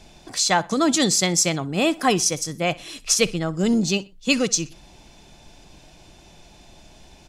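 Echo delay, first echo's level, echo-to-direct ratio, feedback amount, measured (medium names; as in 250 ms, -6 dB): 62 ms, -21.5 dB, -21.0 dB, 33%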